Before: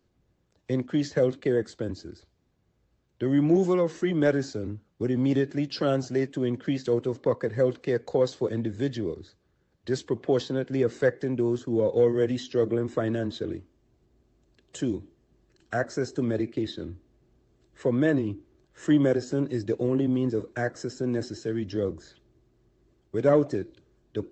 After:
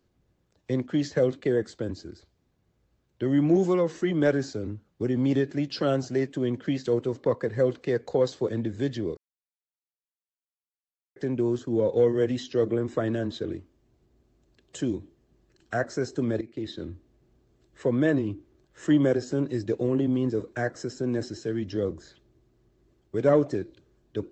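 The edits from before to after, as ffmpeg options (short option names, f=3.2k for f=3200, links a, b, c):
-filter_complex "[0:a]asplit=4[a][b][c][d];[a]atrim=end=9.17,asetpts=PTS-STARTPTS,afade=t=out:st=9.166:d=0.004:c=hsin[e];[b]atrim=start=9.17:end=11.16,asetpts=PTS-STARTPTS,volume=0[f];[c]atrim=start=11.16:end=16.41,asetpts=PTS-STARTPTS,afade=t=in:d=0.004:c=hsin,afade=t=out:st=5.246:d=0.004:c=hsin:silence=0.188365[g];[d]atrim=start=16.41,asetpts=PTS-STARTPTS,afade=t=in:d=0.4:silence=0.188365[h];[e][f][g][h]concat=n=4:v=0:a=1"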